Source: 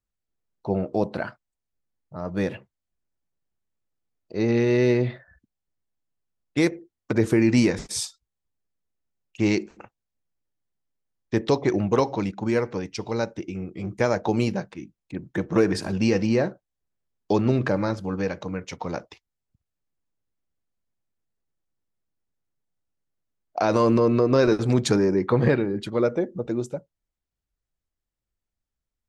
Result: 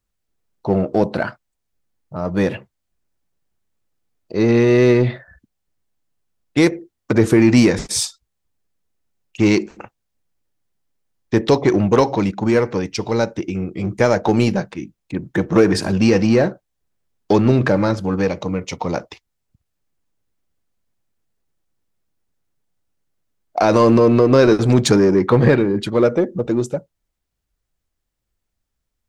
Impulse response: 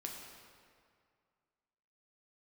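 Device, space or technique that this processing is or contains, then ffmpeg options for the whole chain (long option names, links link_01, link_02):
parallel distortion: -filter_complex "[0:a]asettb=1/sr,asplit=3[link_01][link_02][link_03];[link_01]atrim=end=18.274[link_04];[link_02]atrim=start=18.27:end=18.95,asetpts=PTS-STARTPTS,afade=type=in:duration=0.004:curve=qsin,afade=type=out:start_time=0.676:duration=0.004:curve=qsin,equalizer=frequency=1600:width_type=o:width=0.24:gain=-14[link_05];[link_03]atrim=start=18.946[link_06];[link_04][link_05]acrossfade=duration=0.004:curve1=hsin:curve2=qsin[link_07];[link_07][link_06]acrossfade=duration=0.004:curve1=qsin:curve2=hsin,asplit=2[link_08][link_09];[link_09]asoftclip=type=hard:threshold=-24.5dB,volume=-7dB[link_10];[link_08][link_10]amix=inputs=2:normalize=0,volume=5.5dB"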